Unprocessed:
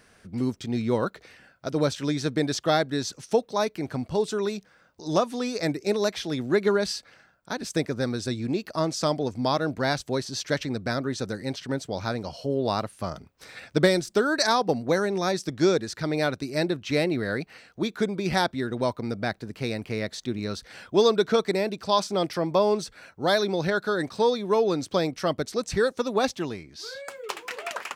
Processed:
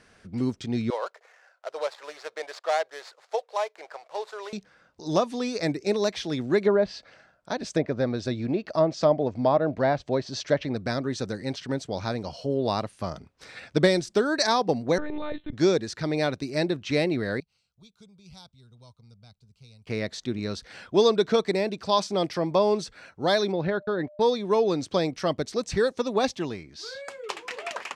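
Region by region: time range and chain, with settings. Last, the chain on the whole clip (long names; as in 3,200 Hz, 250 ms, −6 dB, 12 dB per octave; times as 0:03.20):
0:00.90–0:04.53: running median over 15 samples + inverse Chebyshev high-pass filter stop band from 270 Hz
0:06.61–0:10.76: treble cut that deepens with the level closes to 1,800 Hz, closed at −20.5 dBFS + parametric band 620 Hz +7 dB 0.5 octaves
0:14.98–0:15.53: downward compressor 4 to 1, threshold −27 dBFS + one-pitch LPC vocoder at 8 kHz 300 Hz
0:17.40–0:19.87: guitar amp tone stack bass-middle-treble 6-0-2 + phaser with its sweep stopped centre 740 Hz, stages 4
0:23.51–0:24.20: noise gate −35 dBFS, range −49 dB + steady tone 600 Hz −46 dBFS + high-frequency loss of the air 350 metres
whole clip: low-pass filter 7,700 Hz 12 dB per octave; dynamic equaliser 1,400 Hz, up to −5 dB, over −45 dBFS, Q 4.3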